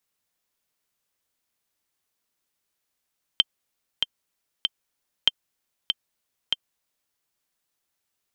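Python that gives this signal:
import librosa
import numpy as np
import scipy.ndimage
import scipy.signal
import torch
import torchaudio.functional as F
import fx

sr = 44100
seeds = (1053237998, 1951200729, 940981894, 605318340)

y = fx.click_track(sr, bpm=96, beats=3, bars=2, hz=3140.0, accent_db=5.5, level_db=-3.5)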